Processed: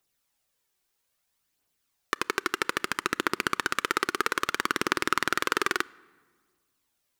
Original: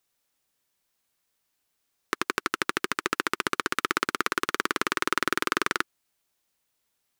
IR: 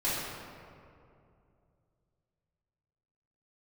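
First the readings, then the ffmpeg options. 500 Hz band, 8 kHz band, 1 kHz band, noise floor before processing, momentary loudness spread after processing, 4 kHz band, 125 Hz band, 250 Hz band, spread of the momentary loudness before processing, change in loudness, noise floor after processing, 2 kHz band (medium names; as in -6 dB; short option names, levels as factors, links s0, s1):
0.0 dB, -0.5 dB, 0.0 dB, -77 dBFS, 4 LU, 0.0 dB, 0.0 dB, -1.0 dB, 4 LU, 0.0 dB, -77 dBFS, 0.0 dB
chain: -filter_complex "[0:a]aphaser=in_gain=1:out_gain=1:delay=2.8:decay=0.41:speed=0.61:type=triangular,asplit=2[s0][s1];[1:a]atrim=start_sample=2205,asetrate=74970,aresample=44100,adelay=29[s2];[s1][s2]afir=irnorm=-1:irlink=0,volume=0.0376[s3];[s0][s3]amix=inputs=2:normalize=0,volume=0.891"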